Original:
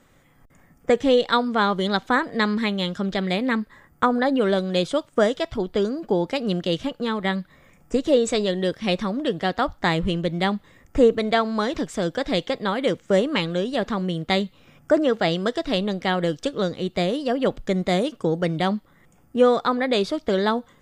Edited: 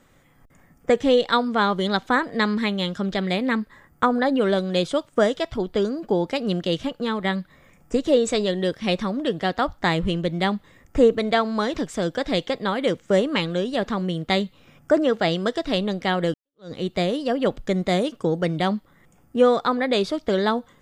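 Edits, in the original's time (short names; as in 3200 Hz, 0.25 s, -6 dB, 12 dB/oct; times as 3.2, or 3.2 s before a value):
16.34–16.72 fade in exponential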